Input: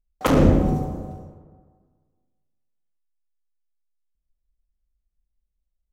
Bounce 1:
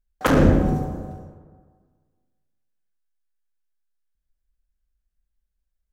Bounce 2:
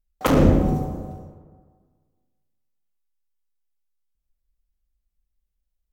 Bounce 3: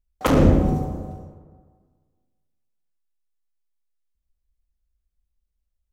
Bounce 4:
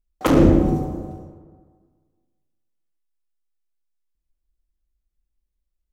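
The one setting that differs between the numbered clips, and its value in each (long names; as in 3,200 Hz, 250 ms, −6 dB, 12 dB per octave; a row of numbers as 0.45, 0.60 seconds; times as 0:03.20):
parametric band, centre frequency: 1,600, 16,000, 68, 330 Hertz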